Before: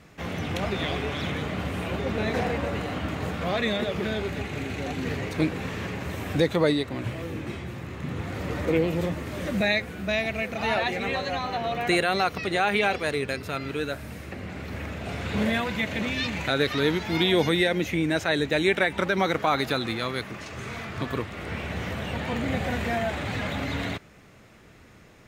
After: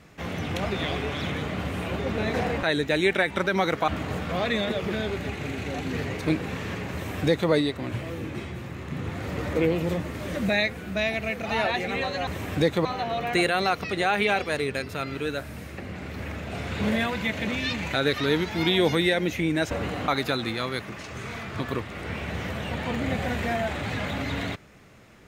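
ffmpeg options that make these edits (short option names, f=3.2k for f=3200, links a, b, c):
-filter_complex "[0:a]asplit=7[a][b][c][d][e][f][g];[a]atrim=end=2.632[h];[b]atrim=start=18.248:end=19.502[i];[c]atrim=start=2.998:end=11.392[j];[d]atrim=start=6.048:end=6.632[k];[e]atrim=start=11.388:end=18.252[l];[f]atrim=start=2.628:end=3.002[m];[g]atrim=start=19.498[n];[h][i]acrossfade=d=0.004:c1=hsin:c2=hsin[o];[o][j]acrossfade=d=0.004:c1=hsin:c2=hsin[p];[p][k]acrossfade=d=0.004:c1=hsin:c2=hsin[q];[q][l]acrossfade=d=0.004:c1=hsin:c2=hsin[r];[r][m]acrossfade=d=0.004:c1=hsin:c2=hsin[s];[s][n]acrossfade=d=0.004:c1=hsin:c2=hsin"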